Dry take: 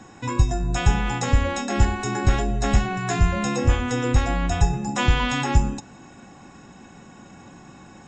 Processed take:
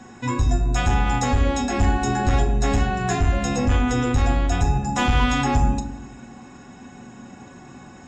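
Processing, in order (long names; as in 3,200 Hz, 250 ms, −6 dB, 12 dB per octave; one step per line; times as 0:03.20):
soft clipping −13.5 dBFS, distortion −13 dB
convolution reverb RT60 0.80 s, pre-delay 4 ms, DRR 3.5 dB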